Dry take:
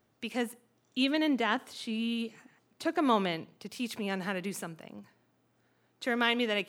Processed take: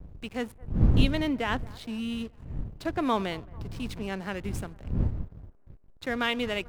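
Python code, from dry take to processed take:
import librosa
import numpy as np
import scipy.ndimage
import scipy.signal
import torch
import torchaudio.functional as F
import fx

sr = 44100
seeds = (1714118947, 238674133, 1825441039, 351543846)

y = fx.dmg_wind(x, sr, seeds[0], corner_hz=120.0, level_db=-31.0)
y = fx.backlash(y, sr, play_db=-38.0)
y = fx.echo_wet_bandpass(y, sr, ms=222, feedback_pct=54, hz=810.0, wet_db=-22.0)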